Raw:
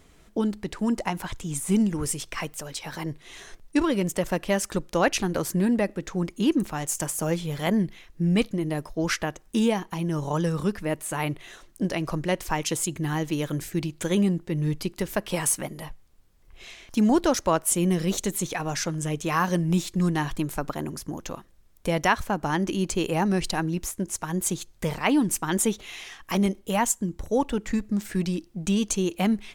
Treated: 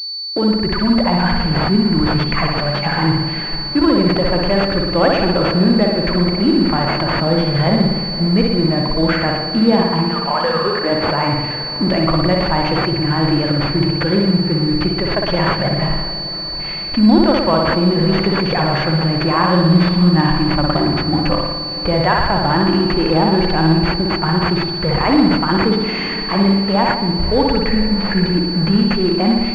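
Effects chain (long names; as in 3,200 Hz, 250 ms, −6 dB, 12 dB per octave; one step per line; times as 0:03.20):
0:10.05–0:10.91: high-pass filter 1,300 Hz → 320 Hz 12 dB per octave
noise reduction from a noise print of the clip's start 9 dB
in parallel at +3 dB: compressor whose output falls as the input rises −35 dBFS, ratio −1
on the sum: leveller curve on the samples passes 2
dead-zone distortion −30.5 dBFS
on a send: feedback delay with all-pass diffusion 509 ms, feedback 65%, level −15 dB
on the sum: spring reverb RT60 1.1 s, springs 56 ms, chirp 30 ms, DRR 0.5 dB
switching amplifier with a slow clock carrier 4,500 Hz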